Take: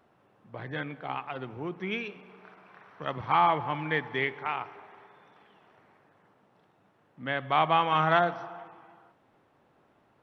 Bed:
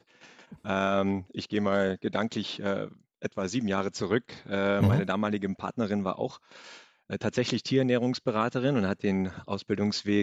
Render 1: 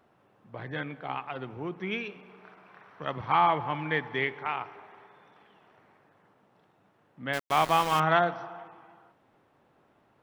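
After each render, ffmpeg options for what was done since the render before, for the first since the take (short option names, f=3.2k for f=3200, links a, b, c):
-filter_complex "[0:a]asettb=1/sr,asplit=3[a][b][c];[a]atrim=end=7.334[d];[b]atrim=start=7.33:end=8,asetpts=PTS-STARTPTS,afade=t=in:d=0.004:c=qsin,afade=t=out:st=0.666:d=0.004:c=qsin,aeval=exprs='val(0)*gte(abs(val(0)),0.0299)':c=same[e];[c]atrim=start=7.996[f];[d][e]acrossfade=d=0.004:c1=hsin:c2=qsin[g];[g][f]acrossfade=d=0.004:c1=qsin:c2=hsin"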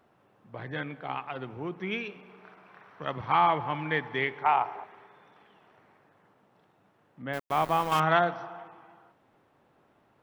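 -filter_complex "[0:a]asettb=1/sr,asplit=3[a][b][c];[a]atrim=end=4.444[d];[b]atrim=start=4.44:end=4.84,asetpts=PTS-STARTPTS,afade=t=in:d=0.004:c=qsin,afade=t=out:st=0.396:d=0.004:c=qsin,equalizer=f=790:t=o:w=1:g=12.5[e];[c]atrim=start=4.836[f];[d][e]acrossfade=d=0.004:c1=hsin:c2=qsin[g];[g][f]acrossfade=d=0.004:c1=qsin:c2=hsin,asettb=1/sr,asplit=3[h][i][j];[h]atrim=end=7.224[k];[i]atrim=start=7.22:end=7.92,asetpts=PTS-STARTPTS,afade=t=in:d=0.004:c=qsin,afade=t=out:st=0.696:d=0.004:c=qsin,equalizer=f=5.2k:w=0.33:g=-9.5[l];[j]atrim=start=7.916[m];[k][l]acrossfade=d=0.004:c1=hsin:c2=qsin[n];[n][m]acrossfade=d=0.004:c1=qsin:c2=hsin"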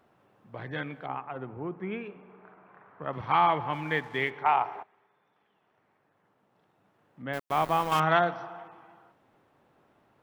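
-filter_complex "[0:a]asettb=1/sr,asplit=3[a][b][c];[a]atrim=end=1.064[d];[b]atrim=start=1.06:end=3.13,asetpts=PTS-STARTPTS,afade=t=in:d=0.004:c=qsin,afade=t=out:st=2.066:d=0.004:c=qsin,lowpass=1.5k[e];[c]atrim=start=3.126[f];[d][e]acrossfade=d=0.004:c1=hsin:c2=qsin[g];[g][f]acrossfade=d=0.004:c1=qsin:c2=hsin,asplit=3[h][i][j];[h]afade=t=out:st=3.72:d=0.02[k];[i]aeval=exprs='sgn(val(0))*max(abs(val(0))-0.00168,0)':c=same,afade=t=in:st=3.72:d=0.02,afade=t=out:st=4.29:d=0.02[l];[j]afade=t=in:st=4.29:d=0.02[m];[k][l][m]amix=inputs=3:normalize=0,asplit=2[n][o];[n]atrim=end=4.83,asetpts=PTS-STARTPTS,afade=t=out:st=4.826:d=0.004:c=hsin:silence=0.188365[p];[o]atrim=start=4.83,asetpts=PTS-STARTPTS,afade=t=in:d=2.43:c=qua:silence=0.188365[q];[p][q]concat=n=2:v=0:a=1"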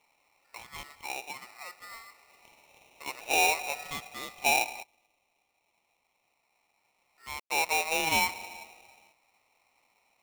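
-af "bandpass=f=790:t=q:w=1.9:csg=0,aeval=exprs='val(0)*sgn(sin(2*PI*1600*n/s))':c=same"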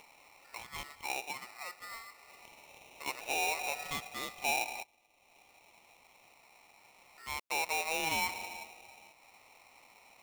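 -af "acompressor=mode=upward:threshold=-49dB:ratio=2.5,alimiter=level_in=0.5dB:limit=-24dB:level=0:latency=1:release=118,volume=-0.5dB"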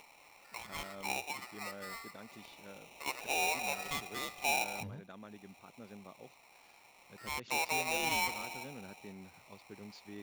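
-filter_complex "[1:a]volume=-23dB[a];[0:a][a]amix=inputs=2:normalize=0"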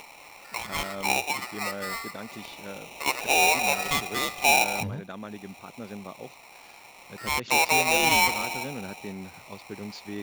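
-af "volume=12dB"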